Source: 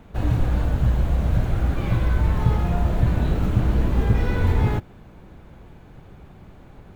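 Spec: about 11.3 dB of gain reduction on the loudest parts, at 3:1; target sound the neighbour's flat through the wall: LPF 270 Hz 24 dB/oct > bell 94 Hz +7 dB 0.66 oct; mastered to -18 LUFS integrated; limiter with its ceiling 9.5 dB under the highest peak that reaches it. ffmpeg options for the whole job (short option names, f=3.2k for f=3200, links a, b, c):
-af "acompressor=threshold=-30dB:ratio=3,alimiter=level_in=2.5dB:limit=-24dB:level=0:latency=1,volume=-2.5dB,lowpass=f=270:w=0.5412,lowpass=f=270:w=1.3066,equalizer=f=94:t=o:w=0.66:g=7,volume=16.5dB"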